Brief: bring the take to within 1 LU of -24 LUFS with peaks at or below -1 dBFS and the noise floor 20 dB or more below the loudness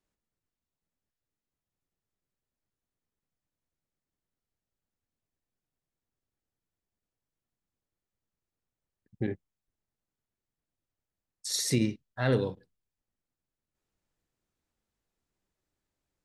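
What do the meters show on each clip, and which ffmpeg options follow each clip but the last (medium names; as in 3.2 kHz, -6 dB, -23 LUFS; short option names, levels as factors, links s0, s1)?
loudness -30.5 LUFS; peak level -13.0 dBFS; loudness target -24.0 LUFS
-> -af "volume=2.11"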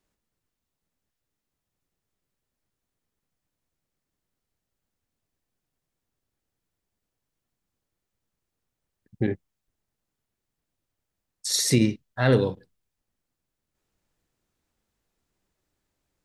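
loudness -24.5 LUFS; peak level -7.0 dBFS; noise floor -84 dBFS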